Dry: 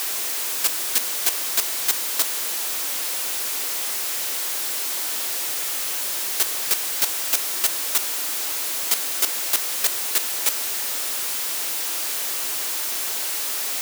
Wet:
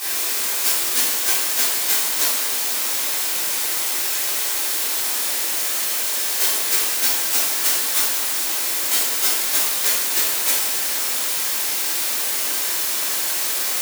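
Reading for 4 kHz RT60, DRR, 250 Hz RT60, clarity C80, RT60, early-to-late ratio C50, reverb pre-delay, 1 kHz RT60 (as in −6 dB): 0.80 s, −10.5 dB, 0.80 s, 4.0 dB, 0.85 s, 0.5 dB, 5 ms, 0.85 s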